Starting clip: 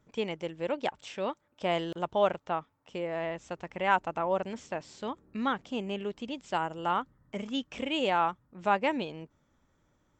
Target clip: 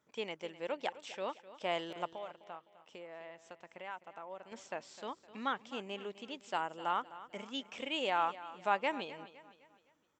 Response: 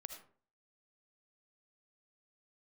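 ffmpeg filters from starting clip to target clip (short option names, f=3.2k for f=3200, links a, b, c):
-filter_complex "[0:a]highpass=f=550:p=1,asettb=1/sr,asplit=3[a][b][c];[a]atrim=end=2.064[d];[b]atrim=start=2.06:end=4.52,asetpts=PTS-STARTPTS,afade=t=in:d=0.004:c=qsin,afade=t=out:st=2.456:d=0.004:c=qsin,acompressor=threshold=-50dB:ratio=2[e];[c]atrim=start=4.516[f];[d][e]acrossfade=d=0.004:c1=hsin:c2=qsin[g];[g][f]acrossfade=d=0.004:c1=qsin:c2=hsin,aecho=1:1:256|512|768|1024:0.158|0.0666|0.028|0.0117,volume=-3.5dB"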